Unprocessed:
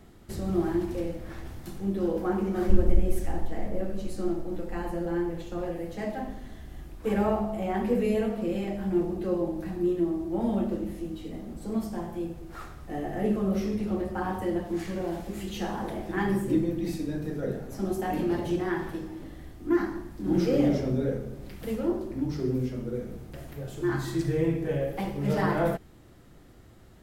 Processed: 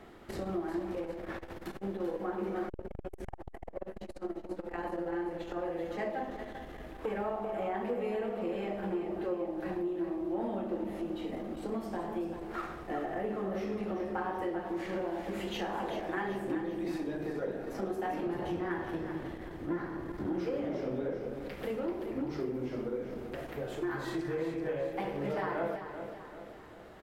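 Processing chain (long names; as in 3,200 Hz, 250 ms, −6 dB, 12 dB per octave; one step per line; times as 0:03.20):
0:18.26–0:20.27: sub-octave generator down 1 octave, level +3 dB
bass and treble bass −14 dB, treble −13 dB
downward compressor 5 to 1, threshold −39 dBFS, peak gain reduction 16 dB
repeating echo 387 ms, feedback 50%, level −9.5 dB
saturating transformer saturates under 260 Hz
level +6.5 dB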